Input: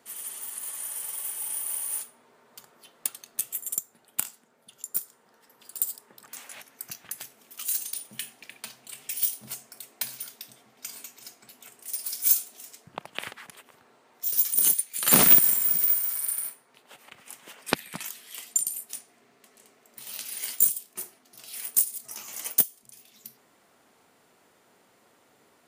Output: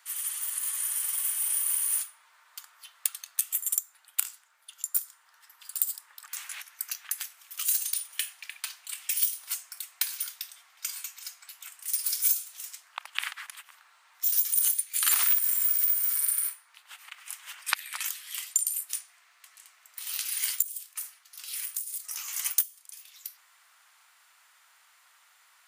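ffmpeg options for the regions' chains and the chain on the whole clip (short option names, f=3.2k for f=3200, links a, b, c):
-filter_complex "[0:a]asettb=1/sr,asplit=3[a][b][c];[a]atrim=end=20.624[d];[b]atrim=start=20.62:end=22.24,asetpts=PTS-STARTPTS,afade=t=in:d=0.004:c=qsin,afade=t=out:st=1.616:d=0.004:c=qsin,highpass=f=790:p=1,acompressor=threshold=-34dB:ratio=8:attack=3.2:release=140:knee=1:detection=peak[e];[c]atrim=start=22.236[f];[d][e]acrossfade=d=0.004:c1=hsin:c2=qsin[g];[g][f]acrossfade=d=0.004:c1=qsin:c2=hsin,highpass=f=1.1k:w=0.5412,highpass=f=1.1k:w=1.3066,acompressor=threshold=-26dB:ratio=6,volume=4.5dB"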